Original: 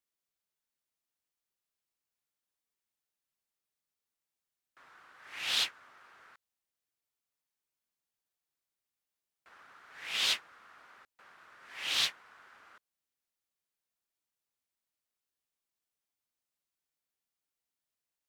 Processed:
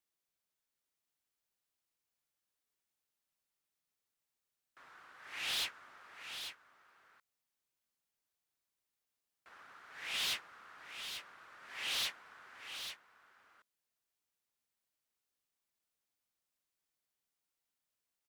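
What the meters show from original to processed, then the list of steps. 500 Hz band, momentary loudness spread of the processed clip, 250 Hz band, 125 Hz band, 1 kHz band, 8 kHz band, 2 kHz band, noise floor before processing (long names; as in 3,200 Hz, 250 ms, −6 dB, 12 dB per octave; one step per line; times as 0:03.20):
−2.5 dB, 21 LU, −2.5 dB, can't be measured, −2.5 dB, −3.5 dB, −3.5 dB, below −85 dBFS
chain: soft clipping −32.5 dBFS, distortion −8 dB
on a send: single-tap delay 841 ms −8.5 dB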